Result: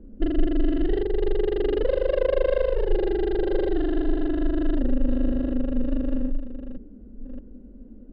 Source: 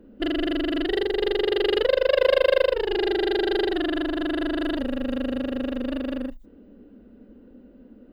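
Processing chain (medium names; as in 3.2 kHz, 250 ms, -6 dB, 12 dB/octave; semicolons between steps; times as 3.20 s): chunks repeated in reverse 616 ms, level -11 dB; tilt EQ -4.5 dB/octave; trim -7.5 dB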